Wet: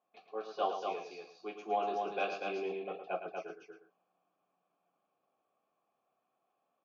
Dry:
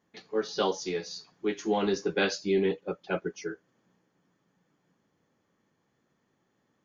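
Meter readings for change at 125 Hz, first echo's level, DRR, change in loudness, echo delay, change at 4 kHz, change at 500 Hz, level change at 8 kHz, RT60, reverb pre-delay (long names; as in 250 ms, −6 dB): below −15 dB, −17.5 dB, no reverb audible, −7.5 dB, 44 ms, −13.0 dB, −8.5 dB, can't be measured, no reverb audible, no reverb audible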